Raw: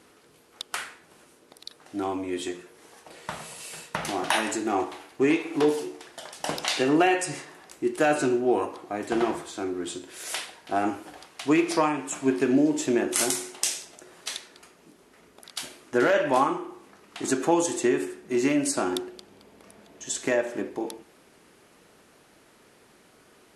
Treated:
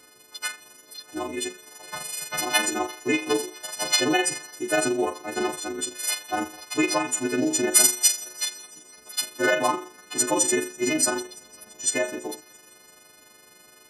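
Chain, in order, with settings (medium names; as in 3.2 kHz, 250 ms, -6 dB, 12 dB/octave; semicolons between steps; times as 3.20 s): partials quantised in pitch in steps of 3 st; feedback echo behind a high-pass 287 ms, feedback 66%, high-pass 3.1 kHz, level -21 dB; granular stretch 0.59×, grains 84 ms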